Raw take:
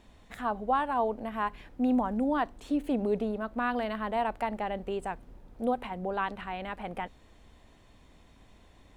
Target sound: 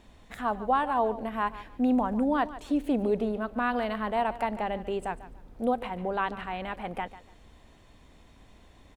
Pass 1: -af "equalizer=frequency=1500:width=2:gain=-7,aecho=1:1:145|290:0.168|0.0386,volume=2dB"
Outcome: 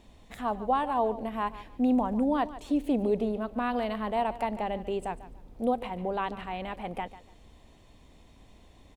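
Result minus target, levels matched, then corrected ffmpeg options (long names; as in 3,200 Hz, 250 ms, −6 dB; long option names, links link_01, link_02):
2,000 Hz band −4.5 dB
-af "aecho=1:1:145|290:0.168|0.0386,volume=2dB"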